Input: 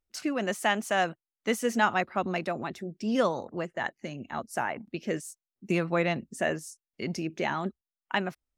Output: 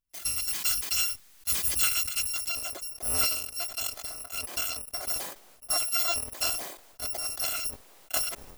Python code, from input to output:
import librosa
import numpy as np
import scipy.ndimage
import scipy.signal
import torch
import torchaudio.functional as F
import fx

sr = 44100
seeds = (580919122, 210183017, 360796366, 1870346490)

y = fx.bit_reversed(x, sr, seeds[0], block=256)
y = fx.peak_eq(y, sr, hz=570.0, db=fx.steps((0.0, -5.5), (2.49, 11.0)), octaves=2.2)
y = fx.sustainer(y, sr, db_per_s=64.0)
y = y * 10.0 ** (-1.5 / 20.0)